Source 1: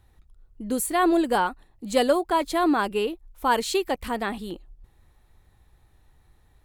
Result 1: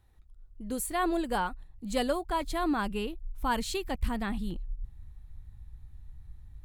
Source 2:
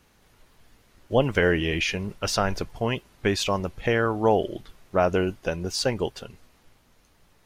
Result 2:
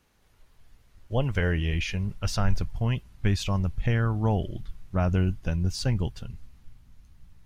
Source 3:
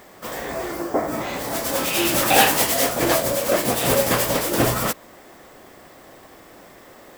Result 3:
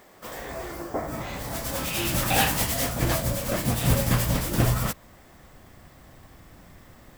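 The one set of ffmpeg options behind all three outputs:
-af "asubboost=boost=10.5:cutoff=140,volume=0.473"

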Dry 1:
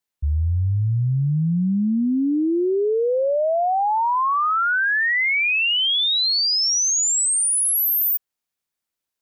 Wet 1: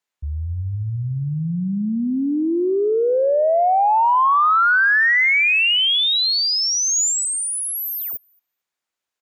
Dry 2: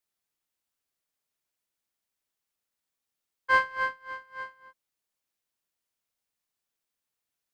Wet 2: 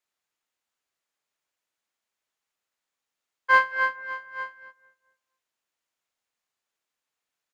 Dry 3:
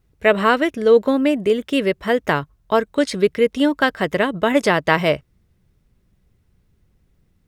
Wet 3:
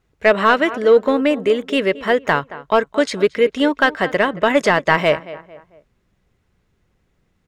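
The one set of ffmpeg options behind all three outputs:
-filter_complex "[0:a]equalizer=f=6900:w=5.1:g=5,asplit=2[s0][s1];[s1]adelay=224,lowpass=f=2000:p=1,volume=0.141,asplit=2[s2][s3];[s3]adelay=224,lowpass=f=2000:p=1,volume=0.41,asplit=2[s4][s5];[s5]adelay=224,lowpass=f=2000:p=1,volume=0.41[s6];[s0][s2][s4][s6]amix=inputs=4:normalize=0,asplit=2[s7][s8];[s8]highpass=f=720:p=1,volume=3.55,asoftclip=type=tanh:threshold=0.944[s9];[s7][s9]amix=inputs=2:normalize=0,lowpass=f=2500:p=1,volume=0.501"

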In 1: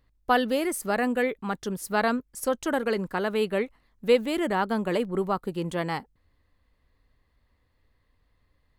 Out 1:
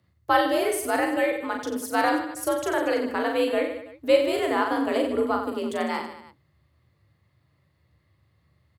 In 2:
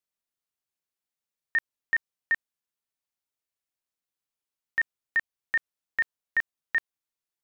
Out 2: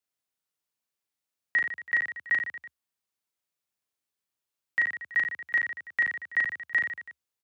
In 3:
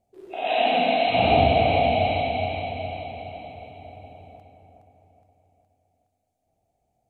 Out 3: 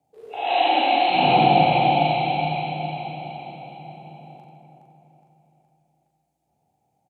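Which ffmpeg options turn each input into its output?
-filter_complex "[0:a]afreqshift=64,asplit=2[s0][s1];[s1]aecho=0:1:40|90|152.5|230.6|328.3:0.631|0.398|0.251|0.158|0.1[s2];[s0][s2]amix=inputs=2:normalize=0"

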